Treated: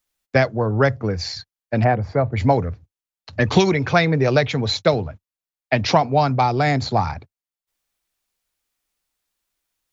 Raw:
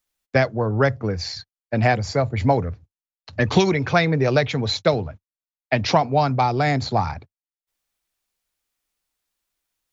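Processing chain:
0:01.83–0:02.31: low-pass filter 1,300 Hz → 2,000 Hz 12 dB per octave
level +1.5 dB

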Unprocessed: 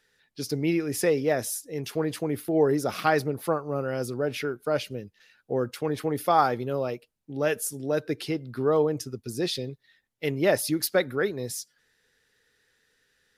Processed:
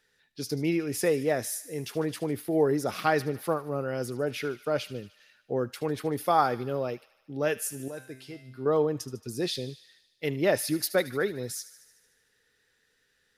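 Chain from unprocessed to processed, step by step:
0:07.88–0:08.66: tuned comb filter 130 Hz, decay 0.5 s, harmonics all, mix 80%
delay with a high-pass on its return 75 ms, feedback 67%, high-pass 1,800 Hz, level −14.5 dB
level −2 dB

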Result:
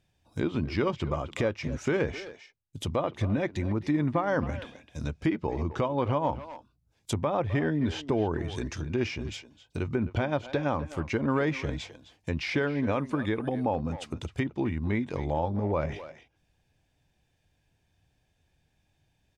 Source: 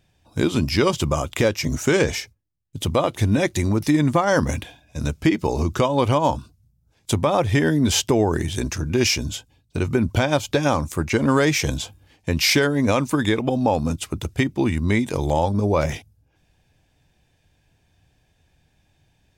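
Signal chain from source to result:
0:12.92–0:13.65: steady tone 9,500 Hz −41 dBFS
far-end echo of a speakerphone 260 ms, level −12 dB
treble cut that deepens with the level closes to 2,300 Hz, closed at −17 dBFS
level −8.5 dB

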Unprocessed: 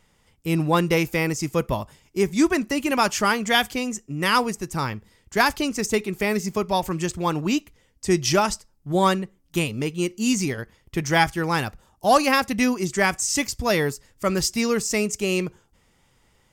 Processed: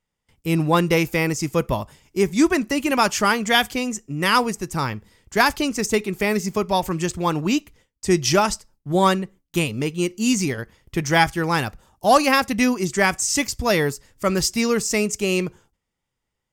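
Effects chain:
noise gate with hold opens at −48 dBFS
level +2 dB

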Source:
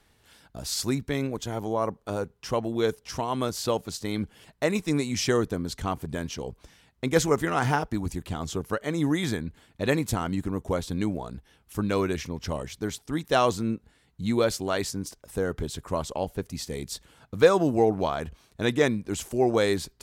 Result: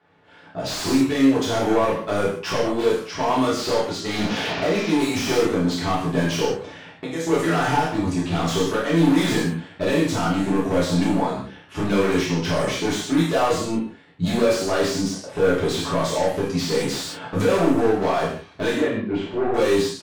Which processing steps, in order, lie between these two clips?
0:04.09–0:04.90: linear delta modulator 32 kbit/s, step −34.5 dBFS
camcorder AGC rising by 11 dB per second
low-pass that shuts in the quiet parts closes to 1,900 Hz, open at −17 dBFS
high-pass filter 100 Hz 12 dB per octave
low-shelf EQ 160 Hz −10.5 dB
0:06.47–0:07.27: downward compressor 4 to 1, threshold −36 dBFS, peak gain reduction 16.5 dB
brickwall limiter −15 dBFS, peak gain reduction 8 dB
hard clipping −24.5 dBFS, distortion −10 dB
0:18.78–0:19.54: high-frequency loss of the air 420 metres
double-tracking delay 30 ms −7 dB
reverb whose tail is shaped and stops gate 210 ms falling, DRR −7 dB
slew-rate limiting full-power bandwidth 190 Hz

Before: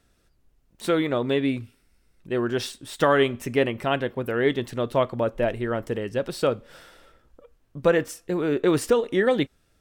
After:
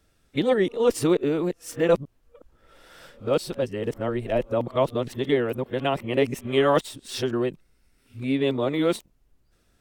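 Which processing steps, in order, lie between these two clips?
played backwards from end to start
dynamic equaliser 1,600 Hz, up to −7 dB, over −44 dBFS, Q 2.6

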